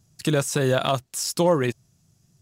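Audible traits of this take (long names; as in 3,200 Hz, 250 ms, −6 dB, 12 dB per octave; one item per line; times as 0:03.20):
background noise floor −66 dBFS
spectral slope −4.5 dB per octave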